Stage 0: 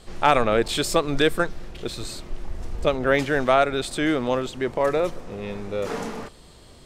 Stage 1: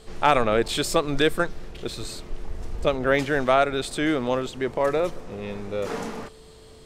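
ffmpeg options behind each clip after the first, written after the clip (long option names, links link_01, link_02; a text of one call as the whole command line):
ffmpeg -i in.wav -af "aeval=exprs='val(0)+0.00355*sin(2*PI*440*n/s)':channel_layout=same,volume=-1dB" out.wav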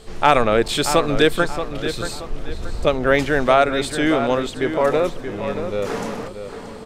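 ffmpeg -i in.wav -filter_complex "[0:a]asplit=2[link_01][link_02];[link_02]adelay=628,lowpass=frequency=3700:poles=1,volume=-9dB,asplit=2[link_03][link_04];[link_04]adelay=628,lowpass=frequency=3700:poles=1,volume=0.37,asplit=2[link_05][link_06];[link_06]adelay=628,lowpass=frequency=3700:poles=1,volume=0.37,asplit=2[link_07][link_08];[link_08]adelay=628,lowpass=frequency=3700:poles=1,volume=0.37[link_09];[link_01][link_03][link_05][link_07][link_09]amix=inputs=5:normalize=0,volume=4.5dB" out.wav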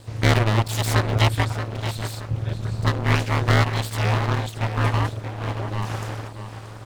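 ffmpeg -i in.wav -af "aeval=exprs='abs(val(0))':channel_layout=same,acrusher=bits=8:dc=4:mix=0:aa=0.000001,aeval=exprs='val(0)*sin(2*PI*110*n/s)':channel_layout=same" out.wav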